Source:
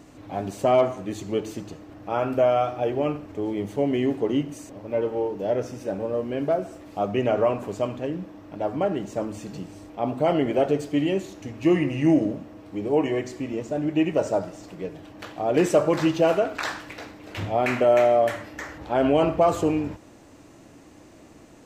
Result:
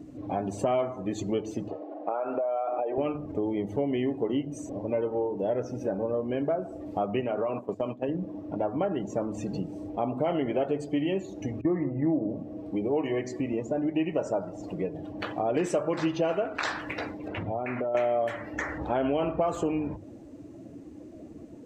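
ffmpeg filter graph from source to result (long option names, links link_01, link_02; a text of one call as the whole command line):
ffmpeg -i in.wav -filter_complex "[0:a]asettb=1/sr,asplit=3[link_01][link_02][link_03];[link_01]atrim=end=1.684[link_04];[link_02]atrim=start=1.68:end=2.98,asetpts=PTS-STARTPTS,afade=type=in:duration=0.004:curve=qsin,afade=type=out:start_time=1.296:duration=0.004:curve=qsin,equalizer=frequency=640:width=1.4:gain=6.5,acompressor=threshold=-24dB:ratio=10:attack=3.2:release=140:knee=1:detection=peak,highpass=370,lowpass=3200[link_05];[link_03]atrim=start=2.976[link_06];[link_04][link_05]acrossfade=duration=0.004:curve1=hsin:curve2=qsin[link_07];[link_07][link_06]acrossfade=duration=0.004:curve1=qsin:curve2=hsin,asettb=1/sr,asplit=3[link_08][link_09][link_10];[link_08]atrim=end=7.204[link_11];[link_09]atrim=start=7.2:end=8.09,asetpts=PTS-STARTPTS,afade=type=in:duration=0.004:curve=qsin,afade=type=out:start_time=0.886:duration=0.004:curve=qsin,agate=range=-13dB:threshold=-33dB:ratio=16:release=100:detection=peak,highpass=130,acompressor=threshold=-25dB:ratio=2.5:attack=3.2:release=140:knee=1:detection=peak[link_12];[link_10]atrim=start=8.086[link_13];[link_11][link_12]acrossfade=duration=0.004:curve1=hsin:curve2=qsin[link_14];[link_14][link_13]acrossfade=duration=0.004:curve1=qsin:curve2=hsin,asettb=1/sr,asplit=3[link_15][link_16][link_17];[link_15]atrim=end=11.614[link_18];[link_16]atrim=start=11.61:end=12.3,asetpts=PTS-STARTPTS,afade=type=in:duration=0.004:curve=qsin,afade=type=out:start_time=0.686:duration=0.004:curve=qsin,lowpass=frequency=1600:width=0.5412,lowpass=frequency=1600:width=1.3066,agate=range=-33dB:threshold=-27dB:ratio=3:release=100:detection=peak[link_19];[link_17]atrim=start=12.296[link_20];[link_18][link_19]acrossfade=duration=0.004:curve1=hsin:curve2=qsin[link_21];[link_21][link_20]acrossfade=duration=0.004:curve1=qsin:curve2=hsin,asettb=1/sr,asplit=3[link_22][link_23][link_24];[link_22]atrim=end=17.284[link_25];[link_23]atrim=start=17.28:end=17.95,asetpts=PTS-STARTPTS,afade=type=in:duration=0.004:curve=qsin,afade=type=out:start_time=0.666:duration=0.004:curve=qsin,aemphasis=mode=reproduction:type=75kf,acompressor=threshold=-36dB:ratio=2.5:attack=3.2:release=140:knee=1:detection=peak[link_26];[link_24]atrim=start=17.946[link_27];[link_25][link_26]acrossfade=duration=0.004:curve1=hsin:curve2=qsin[link_28];[link_28][link_27]acrossfade=duration=0.004:curve1=qsin:curve2=hsin,bandreject=frequency=50:width_type=h:width=6,bandreject=frequency=100:width_type=h:width=6,bandreject=frequency=150:width_type=h:width=6,afftdn=noise_reduction=18:noise_floor=-44,acompressor=threshold=-35dB:ratio=3,volume=6.5dB" out.wav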